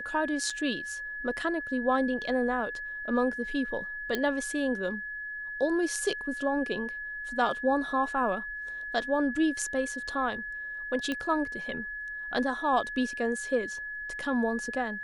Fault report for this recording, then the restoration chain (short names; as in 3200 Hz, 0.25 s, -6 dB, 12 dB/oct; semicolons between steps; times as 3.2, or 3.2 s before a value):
tone 1700 Hz -35 dBFS
0.5 gap 3.2 ms
4.15 pop -15 dBFS
11.12 pop -18 dBFS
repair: de-click; notch 1700 Hz, Q 30; interpolate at 0.5, 3.2 ms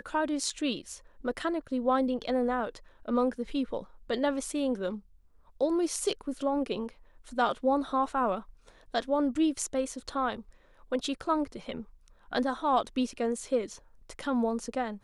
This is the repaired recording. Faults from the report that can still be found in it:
none